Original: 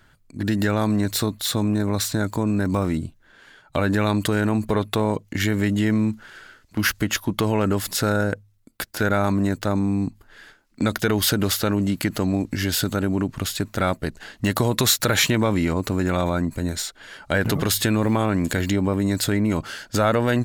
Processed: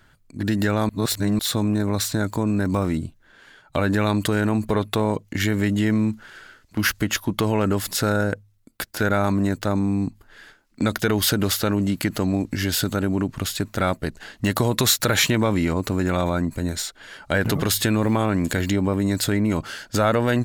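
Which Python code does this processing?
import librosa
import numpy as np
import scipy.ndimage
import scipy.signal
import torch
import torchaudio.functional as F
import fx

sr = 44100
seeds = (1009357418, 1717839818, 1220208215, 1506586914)

y = fx.edit(x, sr, fx.reverse_span(start_s=0.89, length_s=0.5), tone=tone)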